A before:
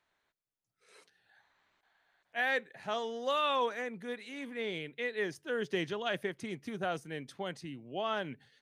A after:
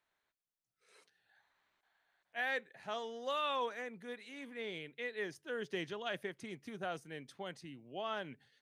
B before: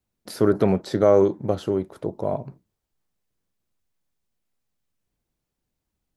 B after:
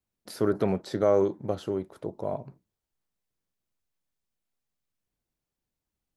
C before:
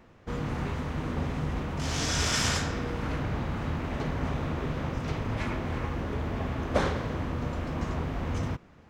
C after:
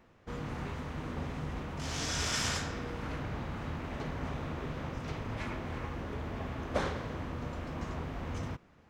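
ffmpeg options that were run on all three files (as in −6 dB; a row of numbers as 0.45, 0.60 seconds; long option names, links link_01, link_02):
-af "lowshelf=frequency=420:gain=-2.5,volume=-5dB"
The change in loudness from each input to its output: −5.5, −6.5, −6.5 LU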